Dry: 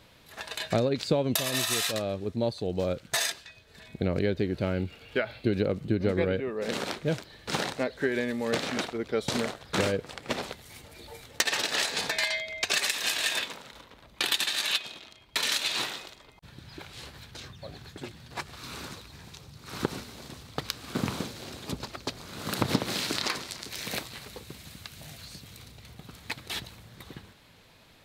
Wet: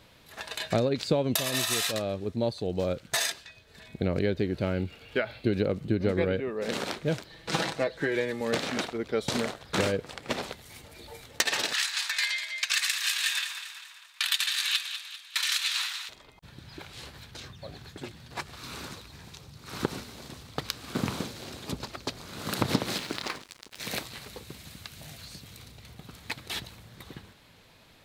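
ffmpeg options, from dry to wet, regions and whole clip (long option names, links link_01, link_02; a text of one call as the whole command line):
ffmpeg -i in.wav -filter_complex "[0:a]asettb=1/sr,asplit=3[link_01][link_02][link_03];[link_01]atrim=end=7.304[link_04];[link_02]atrim=start=7.3:end=8.41,asetpts=PTS-STARTPTS,afade=type=in:duration=0.004:curve=qsin,afade=type=out:start_time=1.106:duration=0.004:curve=qsin,highshelf=frequency=11000:gain=-6,aecho=1:1:6.1:0.6,atrim=end_sample=48951[link_05];[link_03]atrim=start=8.406[link_06];[link_04][link_05]acrossfade=duration=0.004:curve1=hsin:curve2=qsin[link_07];[link_07][link_06]acrossfade=duration=0.004:curve1=qsin:curve2=hsin,asettb=1/sr,asplit=3[link_08][link_09][link_10];[link_08]atrim=end=11.734[link_11];[link_09]atrim=start=11.73:end=16.09,asetpts=PTS-STARTPTS,afade=type=in:duration=0.004:curve=qsin,afade=type=out:start_time=4.356:duration=0.004:curve=qsin,highpass=frequency=1200:width=0.5412,highpass=frequency=1200:width=1.3066,aecho=1:1:197|394|591|788|985:0.316|0.152|0.0729|0.035|0.0168,atrim=end_sample=192276[link_12];[link_10]atrim=start=16.086[link_13];[link_11][link_12]acrossfade=duration=0.004:curve1=hsin:curve2=qsin[link_14];[link_14][link_13]acrossfade=duration=0.004:curve1=qsin:curve2=hsin,asettb=1/sr,asplit=3[link_15][link_16][link_17];[link_15]atrim=end=22.984[link_18];[link_16]atrim=start=22.98:end=23.8,asetpts=PTS-STARTPTS,afade=type=in:duration=0.004:curve=qsin,afade=type=out:start_time=0.816:duration=0.004:curve=qsin,highshelf=frequency=4700:gain=-10.5,aeval=exprs='sgn(val(0))*max(abs(val(0))-0.00794,0)':channel_layout=same[link_19];[link_17]atrim=start=23.796[link_20];[link_18][link_19]acrossfade=duration=0.004:curve1=hsin:curve2=qsin[link_21];[link_21][link_20]acrossfade=duration=0.004:curve1=qsin:curve2=hsin" out.wav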